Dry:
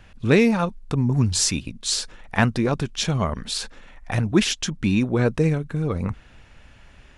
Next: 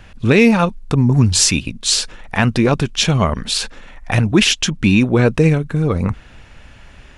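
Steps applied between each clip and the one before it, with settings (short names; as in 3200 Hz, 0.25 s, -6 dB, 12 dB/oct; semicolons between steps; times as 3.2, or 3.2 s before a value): dynamic EQ 2700 Hz, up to +5 dB, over -43 dBFS, Q 2.6; maximiser +8.5 dB; gain -1 dB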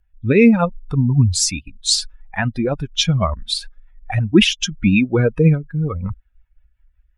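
per-bin expansion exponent 2; rotary speaker horn 0.85 Hz, later 5.5 Hz, at 2.65; gain +4 dB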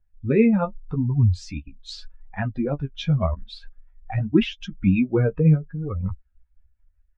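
flange 0.85 Hz, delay 9.3 ms, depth 6.3 ms, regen +19%; tape spacing loss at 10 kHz 37 dB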